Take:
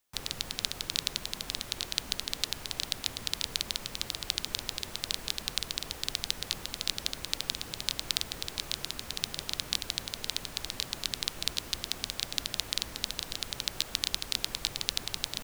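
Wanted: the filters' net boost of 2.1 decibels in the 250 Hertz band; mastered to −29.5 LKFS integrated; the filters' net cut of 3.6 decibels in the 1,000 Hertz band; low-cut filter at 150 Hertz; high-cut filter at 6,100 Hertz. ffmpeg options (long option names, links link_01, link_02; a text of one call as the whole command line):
ffmpeg -i in.wav -af "highpass=150,lowpass=6100,equalizer=frequency=250:width_type=o:gain=4,equalizer=frequency=1000:width_type=o:gain=-5,volume=5dB" out.wav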